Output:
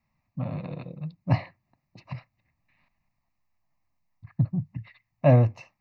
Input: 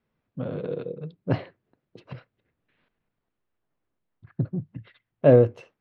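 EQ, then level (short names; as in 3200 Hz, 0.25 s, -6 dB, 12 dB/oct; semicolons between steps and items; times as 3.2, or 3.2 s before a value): bell 330 Hz -5.5 dB 1.6 oct; fixed phaser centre 2200 Hz, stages 8; +6.0 dB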